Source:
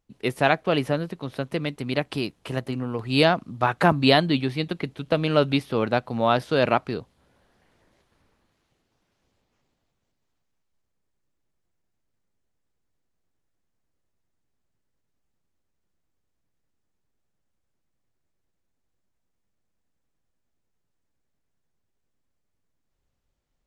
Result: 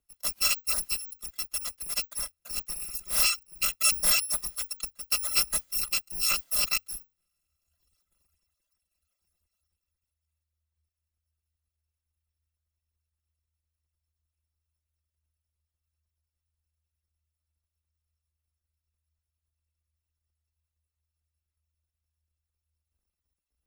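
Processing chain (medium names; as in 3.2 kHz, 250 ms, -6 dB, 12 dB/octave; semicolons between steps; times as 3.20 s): bit-reversed sample order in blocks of 256 samples; frequency shift -78 Hz; reverb removal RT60 1.3 s; trim -5 dB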